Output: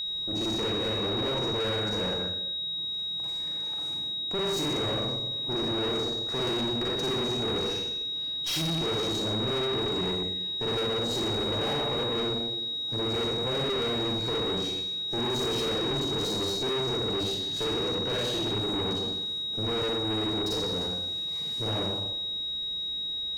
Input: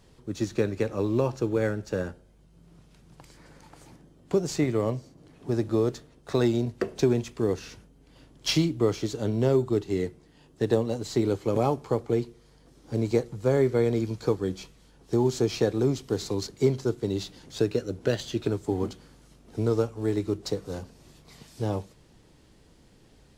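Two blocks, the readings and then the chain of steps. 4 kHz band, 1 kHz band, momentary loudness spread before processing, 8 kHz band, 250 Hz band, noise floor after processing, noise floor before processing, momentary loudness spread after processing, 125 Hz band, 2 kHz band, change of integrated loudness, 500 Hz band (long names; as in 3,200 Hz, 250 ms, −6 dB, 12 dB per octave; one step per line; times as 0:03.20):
+15.5 dB, +2.5 dB, 9 LU, 0.0 dB, −5.0 dB, −33 dBFS, −57 dBFS, 3 LU, −5.5 dB, +2.5 dB, −0.5 dB, −4.5 dB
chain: four-comb reverb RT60 0.91 s, DRR −6.5 dB
tube saturation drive 29 dB, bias 0.65
steady tone 3,800 Hz −30 dBFS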